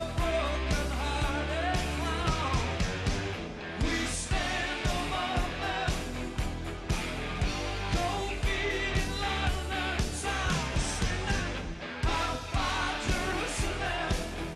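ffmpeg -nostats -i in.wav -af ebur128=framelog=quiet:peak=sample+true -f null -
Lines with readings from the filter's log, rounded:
Integrated loudness:
  I:         -31.3 LUFS
  Threshold: -41.3 LUFS
Loudness range:
  LRA:         1.8 LU
  Threshold: -51.4 LUFS
  LRA low:   -32.4 LUFS
  LRA high:  -30.6 LUFS
Sample peak:
  Peak:      -14.9 dBFS
True peak:
  Peak:      -14.8 dBFS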